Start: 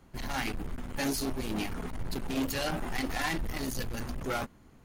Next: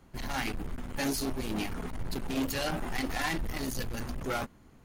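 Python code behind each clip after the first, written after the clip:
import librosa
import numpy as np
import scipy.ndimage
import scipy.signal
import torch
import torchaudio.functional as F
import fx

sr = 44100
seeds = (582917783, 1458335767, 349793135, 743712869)

y = x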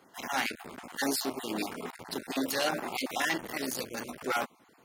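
y = fx.spec_dropout(x, sr, seeds[0], share_pct=24)
y = scipy.signal.sosfilt(scipy.signal.butter(2, 320.0, 'highpass', fs=sr, output='sos'), y)
y = F.gain(torch.from_numpy(y), 4.0).numpy()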